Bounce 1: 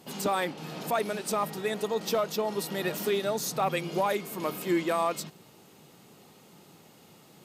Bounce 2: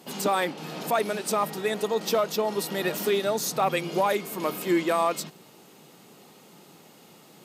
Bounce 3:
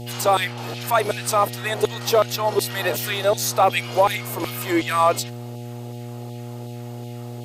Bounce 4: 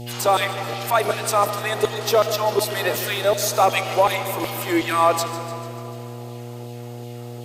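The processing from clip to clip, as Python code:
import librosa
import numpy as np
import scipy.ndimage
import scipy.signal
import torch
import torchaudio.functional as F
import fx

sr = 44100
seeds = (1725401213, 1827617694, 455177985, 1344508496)

y1 = scipy.signal.sosfilt(scipy.signal.butter(2, 160.0, 'highpass', fs=sr, output='sos'), x)
y1 = y1 * 10.0 ** (3.5 / 20.0)
y2 = fx.filter_lfo_highpass(y1, sr, shape='saw_down', hz=2.7, low_hz=330.0, high_hz=3300.0, q=1.4)
y2 = fx.dmg_buzz(y2, sr, base_hz=120.0, harmonics=7, level_db=-39.0, tilt_db=-6, odd_only=False)
y2 = y2 * 10.0 ** (5.5 / 20.0)
y3 = fx.echo_feedback(y2, sr, ms=148, feedback_pct=59, wet_db=-14)
y3 = fx.rev_freeverb(y3, sr, rt60_s=3.2, hf_ratio=0.75, predelay_ms=35, drr_db=10.5)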